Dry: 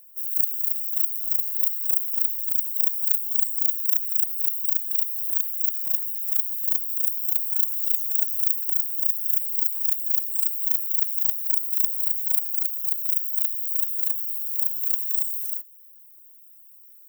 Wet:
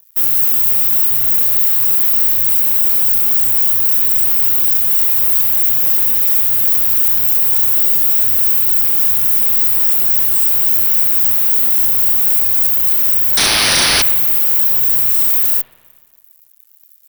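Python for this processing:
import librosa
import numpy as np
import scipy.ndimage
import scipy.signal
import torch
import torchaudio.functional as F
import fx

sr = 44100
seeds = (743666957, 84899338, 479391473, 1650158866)

y = fx.fixed_phaser(x, sr, hz=2300.0, stages=4)
y = fx.fuzz(y, sr, gain_db=34.0, gate_db=-43.0)
y = fx.resample_bad(y, sr, factor=3, down='none', up='hold', at=(13.37, 14.02))
y = fx.rev_spring(y, sr, rt60_s=1.6, pass_ms=(51,), chirp_ms=80, drr_db=14.5)
y = F.gain(torch.from_numpy(y), 4.0).numpy()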